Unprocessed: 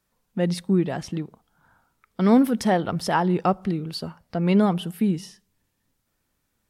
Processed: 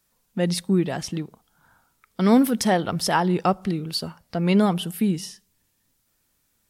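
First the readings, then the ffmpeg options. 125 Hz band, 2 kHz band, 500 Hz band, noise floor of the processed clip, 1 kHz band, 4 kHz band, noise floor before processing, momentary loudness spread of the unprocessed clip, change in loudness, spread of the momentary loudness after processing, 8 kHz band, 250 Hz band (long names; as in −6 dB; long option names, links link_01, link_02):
0.0 dB, +2.0 dB, 0.0 dB, −70 dBFS, +0.5 dB, +5.5 dB, −75 dBFS, 14 LU, +0.5 dB, 14 LU, +7.5 dB, 0.0 dB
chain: -af "highshelf=frequency=3200:gain=9"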